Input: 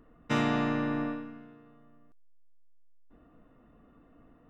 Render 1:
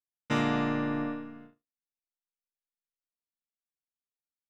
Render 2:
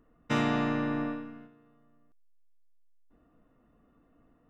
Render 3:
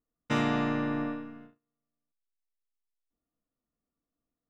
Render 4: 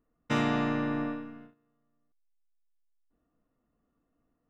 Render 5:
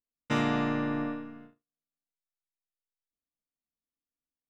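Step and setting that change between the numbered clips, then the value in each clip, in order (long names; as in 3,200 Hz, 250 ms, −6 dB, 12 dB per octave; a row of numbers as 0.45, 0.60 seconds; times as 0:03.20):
noise gate, range: −57, −6, −31, −18, −45 decibels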